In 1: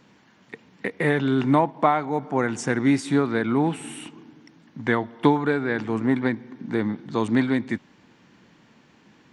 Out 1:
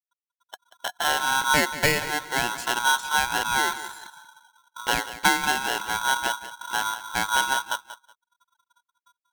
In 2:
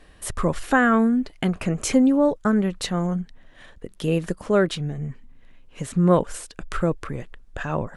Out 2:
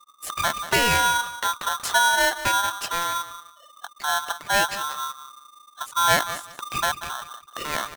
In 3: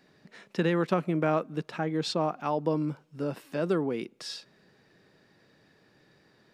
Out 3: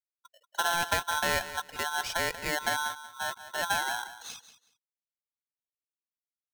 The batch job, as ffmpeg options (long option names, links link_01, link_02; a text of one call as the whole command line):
ffmpeg -i in.wav -filter_complex "[0:a]afftfilt=real='re*gte(hypot(re,im),0.0178)':imag='im*gte(hypot(re,im),0.0178)':win_size=1024:overlap=0.75,asplit=2[link_01][link_02];[link_02]aecho=0:1:186|372:0.211|0.0444[link_03];[link_01][link_03]amix=inputs=2:normalize=0,aeval=exprs='val(0)*sgn(sin(2*PI*1200*n/s))':channel_layout=same,volume=-2.5dB" out.wav